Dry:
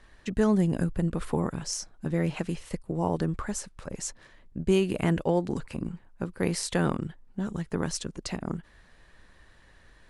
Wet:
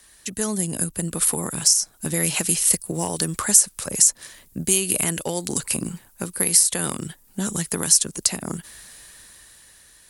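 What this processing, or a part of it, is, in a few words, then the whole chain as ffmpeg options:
FM broadcast chain: -filter_complex "[0:a]highpass=f=64:p=1,dynaudnorm=f=290:g=9:m=11.5dB,acrossover=split=100|1900[a][b][c];[a]acompressor=threshold=-43dB:ratio=4[d];[b]acompressor=threshold=-19dB:ratio=4[e];[c]acompressor=threshold=-30dB:ratio=4[f];[d][e][f]amix=inputs=3:normalize=0,aemphasis=mode=production:type=75fm,alimiter=limit=-11dB:level=0:latency=1:release=427,asoftclip=type=hard:threshold=-13dB,lowpass=f=15k:w=0.5412,lowpass=f=15k:w=1.3066,aemphasis=mode=production:type=75fm,volume=-1.5dB"

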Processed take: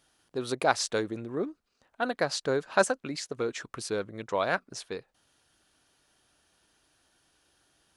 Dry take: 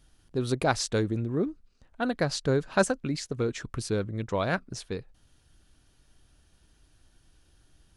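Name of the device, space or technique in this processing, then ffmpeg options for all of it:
filter by subtraction: -filter_complex "[0:a]asplit=2[a][b];[b]lowpass=740,volume=-1[c];[a][c]amix=inputs=2:normalize=0"

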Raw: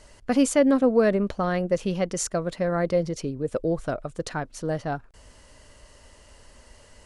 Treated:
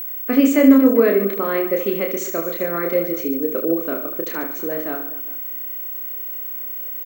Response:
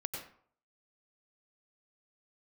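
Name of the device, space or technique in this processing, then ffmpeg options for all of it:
old television with a line whistle: -af "highpass=f=230:w=0.5412,highpass=f=230:w=1.3066,equalizer=f=270:t=q:w=4:g=8,equalizer=f=390:t=q:w=4:g=8,equalizer=f=790:t=q:w=4:g=-8,equalizer=f=1.2k:t=q:w=4:g=4,equalizer=f=2.2k:t=q:w=4:g=9,equalizer=f=5.1k:t=q:w=4:g=-10,lowpass=f=7.1k:w=0.5412,lowpass=f=7.1k:w=1.3066,aecho=1:1:30|75|142.5|243.8|395.6:0.631|0.398|0.251|0.158|0.1,aeval=exprs='val(0)+0.0501*sin(2*PI*15734*n/s)':c=same"

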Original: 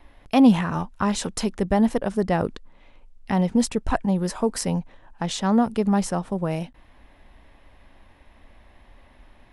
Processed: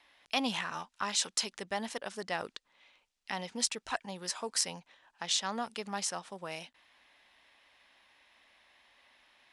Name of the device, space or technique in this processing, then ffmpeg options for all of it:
piezo pickup straight into a mixer: -af "lowpass=5.2k,aderivative,volume=7.5dB"

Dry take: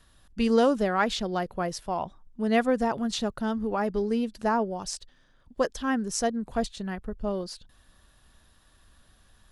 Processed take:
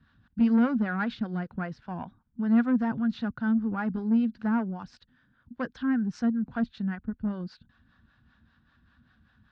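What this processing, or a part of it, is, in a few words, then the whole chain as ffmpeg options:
guitar amplifier with harmonic tremolo: -filter_complex "[0:a]bass=f=250:g=11,treble=f=4k:g=-3,acrossover=split=440[a][b];[a]aeval=exprs='val(0)*(1-0.7/2+0.7/2*cos(2*PI*5.1*n/s))':c=same[c];[b]aeval=exprs='val(0)*(1-0.7/2-0.7/2*cos(2*PI*5.1*n/s))':c=same[d];[c][d]amix=inputs=2:normalize=0,asoftclip=type=tanh:threshold=-19dB,highpass=98,equalizer=f=240:t=q:w=4:g=8,equalizer=f=400:t=q:w=4:g=-7,equalizer=f=590:t=q:w=4:g=-8,equalizer=f=1.5k:t=q:w=4:g=10,equalizer=f=3.2k:t=q:w=4:g=-3,lowpass=f=4.1k:w=0.5412,lowpass=f=4.1k:w=1.3066,volume=-2.5dB"

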